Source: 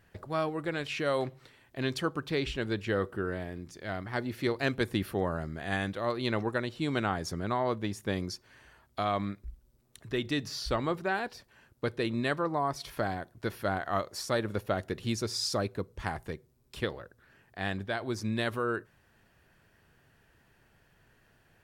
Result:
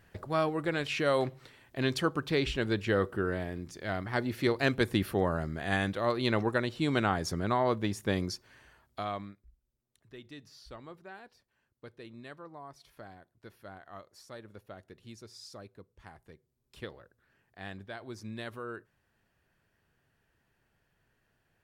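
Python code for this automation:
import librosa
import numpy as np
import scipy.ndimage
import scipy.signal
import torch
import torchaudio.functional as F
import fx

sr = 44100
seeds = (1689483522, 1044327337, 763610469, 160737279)

y = fx.gain(x, sr, db=fx.line((8.24, 2.0), (9.13, -6.0), (9.45, -17.0), (16.19, -17.0), (16.78, -9.5)))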